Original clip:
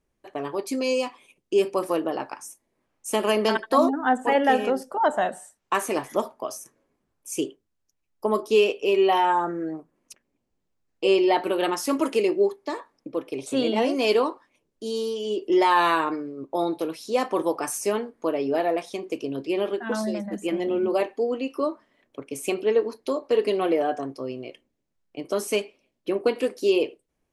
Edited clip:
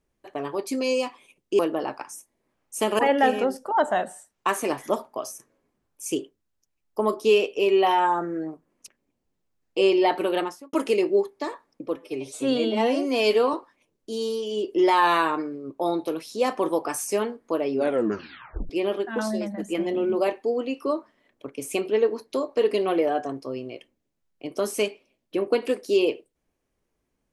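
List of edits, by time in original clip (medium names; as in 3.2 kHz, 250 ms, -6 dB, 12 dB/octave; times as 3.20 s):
1.59–1.91 s: delete
3.31–4.25 s: delete
11.57–11.99 s: studio fade out
13.22–14.27 s: stretch 1.5×
18.47 s: tape stop 0.96 s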